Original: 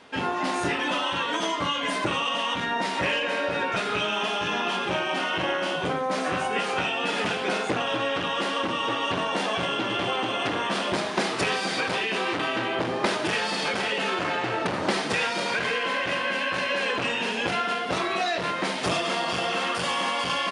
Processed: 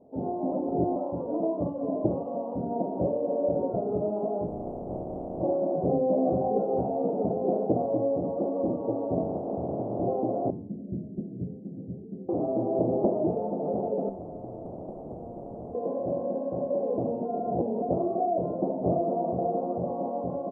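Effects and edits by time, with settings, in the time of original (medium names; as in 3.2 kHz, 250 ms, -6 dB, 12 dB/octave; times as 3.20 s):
0.52–0.96 s: reverse
4.46–5.40 s: spectral contrast reduction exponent 0.12
5.90–7.09 s: doubling 15 ms -5.5 dB
7.97–8.39 s: low-pass 1.3 kHz
9.21–9.99 s: spectral peaks clipped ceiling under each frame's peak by 20 dB
10.50–12.29 s: Chebyshev band-stop 170–7200 Hz
14.09–15.75 s: spectrum-flattening compressor 10:1
17.25–17.82 s: reverse
whole clip: elliptic low-pass 690 Hz, stop band 60 dB; de-hum 96.09 Hz, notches 27; level rider gain up to 4 dB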